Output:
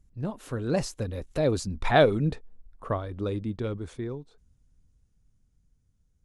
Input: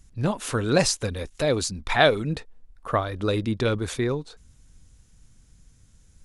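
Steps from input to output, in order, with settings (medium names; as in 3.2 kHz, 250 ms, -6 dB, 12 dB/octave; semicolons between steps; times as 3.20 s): Doppler pass-by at 1.96 s, 11 m/s, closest 6.9 m; tilt shelf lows +5.5 dB; trim -2.5 dB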